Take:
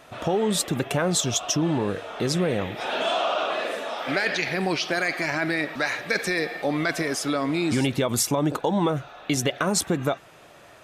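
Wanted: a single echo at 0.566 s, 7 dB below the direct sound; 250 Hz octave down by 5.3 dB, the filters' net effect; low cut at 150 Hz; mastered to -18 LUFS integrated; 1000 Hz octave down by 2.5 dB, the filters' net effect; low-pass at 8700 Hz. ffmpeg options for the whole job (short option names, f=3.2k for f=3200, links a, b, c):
-af "highpass=150,lowpass=8.7k,equalizer=f=250:t=o:g=-6.5,equalizer=f=1k:t=o:g=-3,aecho=1:1:566:0.447,volume=8.5dB"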